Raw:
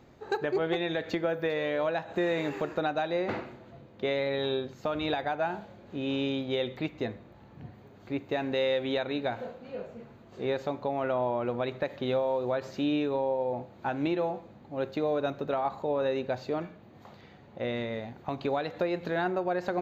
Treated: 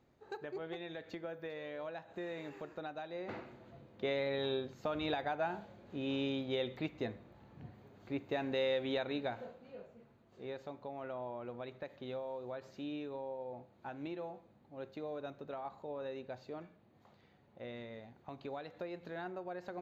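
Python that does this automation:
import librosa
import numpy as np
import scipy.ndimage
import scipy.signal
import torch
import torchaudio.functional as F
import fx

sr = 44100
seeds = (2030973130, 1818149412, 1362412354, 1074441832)

y = fx.gain(x, sr, db=fx.line((3.12, -14.5), (3.65, -6.0), (9.15, -6.0), (9.95, -14.0)))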